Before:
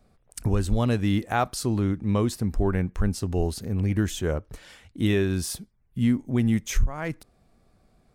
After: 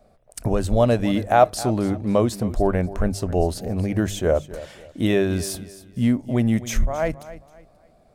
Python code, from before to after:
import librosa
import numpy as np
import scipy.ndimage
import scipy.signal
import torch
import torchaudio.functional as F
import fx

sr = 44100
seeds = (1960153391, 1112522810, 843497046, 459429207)

y = fx.peak_eq(x, sr, hz=620.0, db=13.5, octaves=0.61)
y = fx.hum_notches(y, sr, base_hz=50, count=3)
y = fx.echo_feedback(y, sr, ms=267, feedback_pct=31, wet_db=-16.0)
y = F.gain(torch.from_numpy(y), 2.0).numpy()